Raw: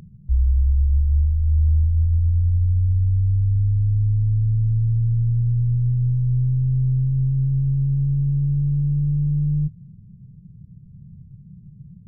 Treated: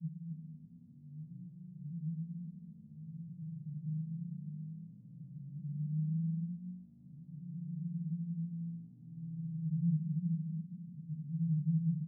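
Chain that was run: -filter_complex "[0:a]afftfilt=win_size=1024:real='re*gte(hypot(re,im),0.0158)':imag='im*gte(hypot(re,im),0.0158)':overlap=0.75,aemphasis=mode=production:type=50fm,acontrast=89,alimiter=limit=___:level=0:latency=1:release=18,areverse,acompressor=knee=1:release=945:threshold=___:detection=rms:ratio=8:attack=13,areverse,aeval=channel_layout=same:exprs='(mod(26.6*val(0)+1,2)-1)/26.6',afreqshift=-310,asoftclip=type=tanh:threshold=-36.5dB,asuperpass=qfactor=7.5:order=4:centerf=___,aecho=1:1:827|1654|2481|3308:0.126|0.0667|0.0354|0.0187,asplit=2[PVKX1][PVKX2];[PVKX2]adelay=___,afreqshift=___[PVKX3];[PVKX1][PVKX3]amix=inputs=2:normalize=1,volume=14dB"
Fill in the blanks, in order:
-9.5dB, -27dB, 160, 2.9, 0.5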